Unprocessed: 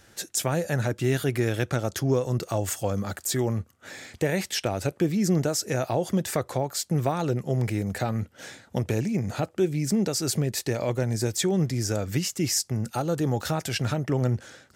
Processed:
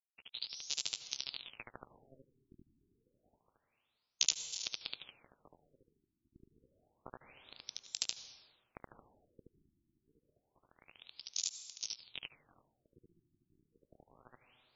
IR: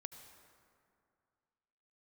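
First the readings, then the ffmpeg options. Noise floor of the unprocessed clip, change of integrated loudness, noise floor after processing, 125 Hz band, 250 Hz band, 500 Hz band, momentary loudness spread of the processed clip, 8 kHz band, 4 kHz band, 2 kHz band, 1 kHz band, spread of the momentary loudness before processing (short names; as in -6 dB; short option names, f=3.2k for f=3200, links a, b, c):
-57 dBFS, -13.0 dB, -84 dBFS, under -40 dB, -40.0 dB, -37.0 dB, 22 LU, -11.0 dB, -7.0 dB, -18.5 dB, -28.0 dB, 5 LU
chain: -filter_complex "[0:a]highpass=f=150:p=1,equalizer=f=190:t=o:w=1.9:g=-15,bandreject=f=60:t=h:w=6,bandreject=f=120:t=h:w=6,bandreject=f=180:t=h:w=6,bandreject=f=240:t=h:w=6,bandreject=f=300:t=h:w=6,bandreject=f=360:t=h:w=6,acompressor=threshold=-38dB:ratio=6,flanger=delay=15:depth=8:speed=2.6,acrusher=bits=4:mix=0:aa=0.5,aexciter=amount=14.3:drive=2.8:freq=2.7k,asplit=2[a][b];[1:a]atrim=start_sample=2205,adelay=74[c];[b][c]afir=irnorm=-1:irlink=0,volume=5dB[d];[a][d]amix=inputs=2:normalize=0,afftfilt=real='re*lt(b*sr/1024,370*pow(7600/370,0.5+0.5*sin(2*PI*0.28*pts/sr)))':imag='im*lt(b*sr/1024,370*pow(7600/370,0.5+0.5*sin(2*PI*0.28*pts/sr)))':win_size=1024:overlap=0.75,volume=1dB"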